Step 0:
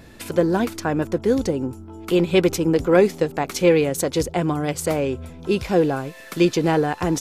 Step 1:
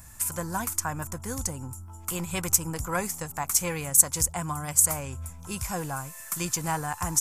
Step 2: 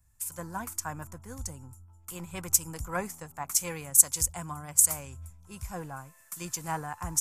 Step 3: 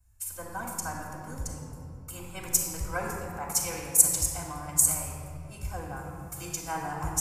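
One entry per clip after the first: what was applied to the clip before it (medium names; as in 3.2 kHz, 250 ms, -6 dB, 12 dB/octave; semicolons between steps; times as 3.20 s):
FFT filter 100 Hz 0 dB, 410 Hz -23 dB, 1 kHz 0 dB, 1.6 kHz -5 dB, 3.9 kHz -11 dB, 7.4 kHz +13 dB; trim -1 dB
three bands expanded up and down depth 70%; trim -6.5 dB
reverberation RT60 2.7 s, pre-delay 3 ms, DRR -8.5 dB; trim -9 dB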